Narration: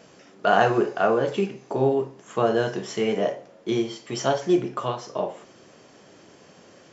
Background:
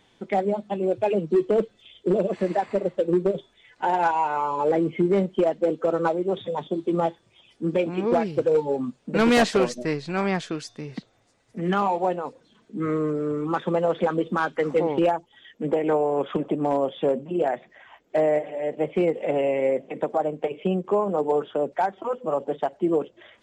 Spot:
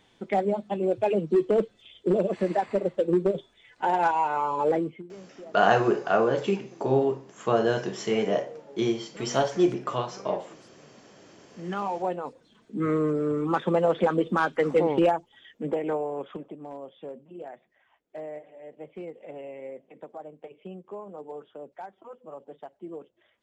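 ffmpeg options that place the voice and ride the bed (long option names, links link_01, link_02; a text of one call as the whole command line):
ffmpeg -i stem1.wav -i stem2.wav -filter_complex "[0:a]adelay=5100,volume=-1.5dB[link_01];[1:a]volume=22dB,afade=type=out:start_time=4.69:duration=0.34:silence=0.0794328,afade=type=in:start_time=11.27:duration=1.47:silence=0.0668344,afade=type=out:start_time=14.96:duration=1.6:silence=0.141254[link_02];[link_01][link_02]amix=inputs=2:normalize=0" out.wav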